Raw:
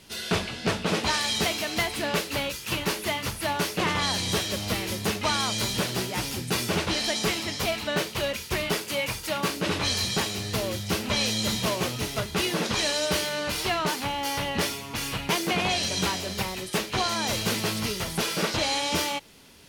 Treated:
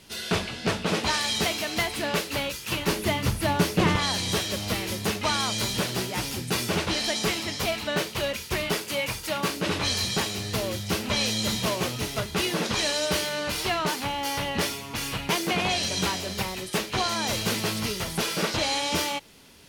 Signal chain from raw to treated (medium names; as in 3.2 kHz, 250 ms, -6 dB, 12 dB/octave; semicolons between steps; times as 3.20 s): 2.88–3.96 s: bass shelf 370 Hz +10.5 dB